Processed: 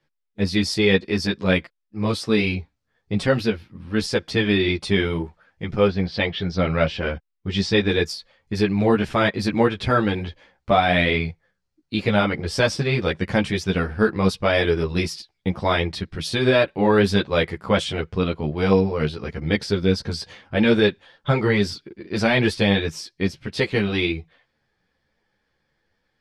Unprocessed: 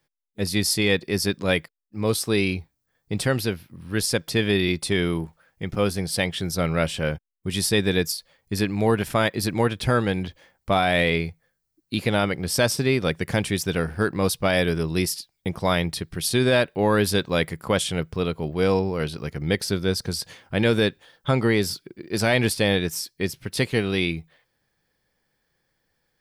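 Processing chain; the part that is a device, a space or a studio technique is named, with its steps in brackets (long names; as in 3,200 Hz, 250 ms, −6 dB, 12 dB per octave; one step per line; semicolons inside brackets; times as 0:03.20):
string-machine ensemble chorus (string-ensemble chorus; low-pass filter 4,500 Hz 12 dB per octave)
0:05.87–0:07.88: low-pass filter 4,200 Hz → 7,300 Hz 24 dB per octave
level +5.5 dB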